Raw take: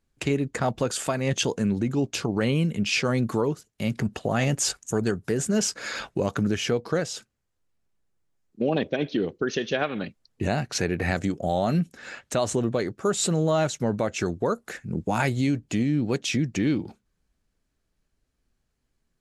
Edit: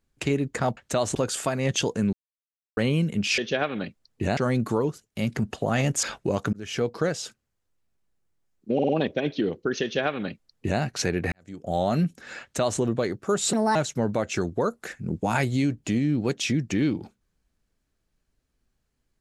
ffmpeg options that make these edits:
-filter_complex "[0:a]asplit=15[a][b][c][d][e][f][g][h][i][j][k][l][m][n][o];[a]atrim=end=0.772[p];[b]atrim=start=12.178:end=12.562[q];[c]atrim=start=0.768:end=1.75,asetpts=PTS-STARTPTS,afade=t=out:st=0.978:d=0.004:c=hsin[r];[d]atrim=start=1.75:end=2.39,asetpts=PTS-STARTPTS,volume=0[s];[e]atrim=start=2.39:end=3.002,asetpts=PTS-STARTPTS,afade=t=in:d=0.004:c=hsin[t];[f]atrim=start=9.578:end=10.572[u];[g]atrim=start=2.998:end=4.662[v];[h]atrim=start=5.938:end=6.44,asetpts=PTS-STARTPTS,afade=t=out:st=0.498:d=0.004:c=hsin[w];[i]atrim=start=6.44:end=8.702,asetpts=PTS-STARTPTS,afade=t=in:d=0.33[x];[j]atrim=start=8.648:end=8.702[y];[k]atrim=start=8.648:end=8.702[z];[l]atrim=start=8.648:end=11.08,asetpts=PTS-STARTPTS,afade=t=out:st=2.428:d=0.004:c=hsin[aa];[m]atrim=start=11.08:end=13.294,asetpts=PTS-STARTPTS,afade=t=in:d=0.44:c=qua[ab];[n]atrim=start=13.29:end=13.6,asetpts=PTS-STARTPTS,asetrate=60858,aresample=44100[ac];[o]atrim=start=13.596[ad];[p][q]acrossfade=d=0.004:c1=hsin:c2=hsin[ae];[r][s][t]concat=n=3:v=0:a=1[af];[ae][af]acrossfade=d=0.004:c1=hsin:c2=hsin[ag];[ag][u]acrossfade=d=0.004:c1=hsin:c2=hsin[ah];[ah][v]acrossfade=d=0.004:c1=hsin:c2=hsin[ai];[w][x]concat=n=2:v=0:a=1[aj];[ai][aj]acrossfade=d=0.004:c1=hsin:c2=hsin[ak];[ak][y]acrossfade=d=0.004:c1=hsin:c2=hsin[al];[al][z]acrossfade=d=0.004:c1=hsin:c2=hsin[am];[aa][ab]concat=n=2:v=0:a=1[an];[am][an]acrossfade=d=0.004:c1=hsin:c2=hsin[ao];[ao][ac]acrossfade=d=0.004:c1=hsin:c2=hsin[ap];[ap][ad]acrossfade=d=0.004:c1=hsin:c2=hsin"

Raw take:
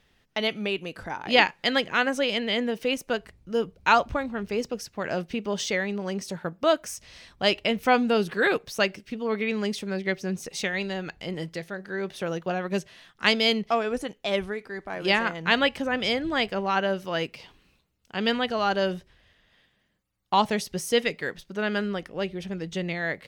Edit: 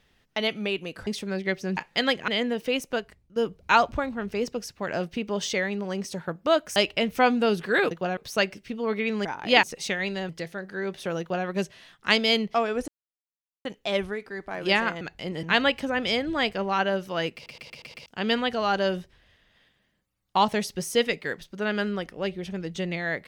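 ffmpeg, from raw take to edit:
-filter_complex "[0:a]asplit=20[a][b][c][d][e][f][g][h][i][j][k][l][m][n][o][p][q][r][s][t];[a]atrim=end=1.072[u];[b]atrim=start=9.668:end=10.372[v];[c]atrim=start=1.448:end=1.962[w];[d]atrim=start=2.448:end=3.53,asetpts=PTS-STARTPTS,afade=t=out:st=0.632:d=0.45:silence=0.158489[x];[e]atrim=start=3.53:end=6.932,asetpts=PTS-STARTPTS,afade=t=in:d=0.004:c=hsin:silence=0.158489[y];[f]atrim=start=7.438:end=8.592[z];[g]atrim=start=12.358:end=12.622[aa];[h]atrim=start=8.588:end=9.672[ab];[i]atrim=start=1.068:end=1.452[ac];[j]atrim=start=10.368:end=11.032[ad];[k]atrim=start=11.448:end=14.04,asetpts=PTS-STARTPTS,afade=t=out:st=2.588:d=0.004:c=hsin,apad=pad_dur=0.77[ae];[l]atrim=start=14.04:end=15.402,asetpts=PTS-STARTPTS,afade=t=in:d=0.004:c=hsin[af];[m]atrim=start=11.028:end=11.452[ag];[n]atrim=start=15.398:end=17.432[ah];[o]atrim=start=17.308:end=17.432[ai];[p]atrim=start=17.308:end=17.432[aj];[q]atrim=start=17.308:end=17.432[ak];[r]atrim=start=17.308:end=17.432[al];[s]atrim=start=17.308:end=17.432[am];[t]atrim=start=18.028[an];[u][v]acrossfade=d=0.004:c1=hsin:c2=hsin[ao];[ao][w]acrossfade=d=0.004:c1=hsin:c2=hsin[ap];[x][y]concat=n=2:v=0:a=1[aq];[ap][aq]acrossfade=d=0.004:c1=hsin:c2=hsin[ar];[ar][z]acrossfade=d=0.004:c1=hsin:c2=hsin[as];[as][aa]acrossfade=d=0.004:c1=hsin:c2=hsin[at];[at][ab]acrossfade=d=0.004:c1=hsin:c2=hsin[au];[au][ac]acrossfade=d=0.004:c1=hsin:c2=hsin[av];[av][ad]acrossfade=d=0.004:c1=hsin:c2=hsin[aw];[ae][af]concat=n=2:v=0:a=1[ax];[aw][ax]acrossfade=d=0.004:c1=hsin:c2=hsin[ay];[ay][ag]acrossfade=d=0.004:c1=hsin:c2=hsin[az];[az][ah]acrossfade=d=0.004:c1=hsin:c2=hsin[ba];[ba][ai]acrossfade=d=0.004:c1=hsin:c2=hsin[bb];[bb][aj]acrossfade=d=0.004:c1=hsin:c2=hsin[bc];[bc][ak]acrossfade=d=0.004:c1=hsin:c2=hsin[bd];[bd][al]acrossfade=d=0.004:c1=hsin:c2=hsin[be];[be][am]acrossfade=d=0.004:c1=hsin:c2=hsin[bf];[bf][an]acrossfade=d=0.004:c1=hsin:c2=hsin"

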